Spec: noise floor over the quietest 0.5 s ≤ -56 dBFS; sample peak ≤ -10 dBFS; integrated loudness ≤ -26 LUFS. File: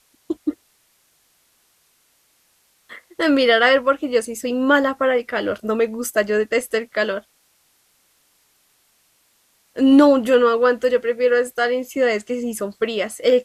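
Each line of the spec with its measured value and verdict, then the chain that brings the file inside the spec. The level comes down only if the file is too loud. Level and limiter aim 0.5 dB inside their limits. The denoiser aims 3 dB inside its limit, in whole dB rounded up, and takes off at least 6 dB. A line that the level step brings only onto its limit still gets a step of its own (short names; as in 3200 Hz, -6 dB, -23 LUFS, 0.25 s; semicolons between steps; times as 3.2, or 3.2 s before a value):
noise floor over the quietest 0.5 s -62 dBFS: OK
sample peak -3.0 dBFS: fail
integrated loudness -18.5 LUFS: fail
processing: gain -8 dB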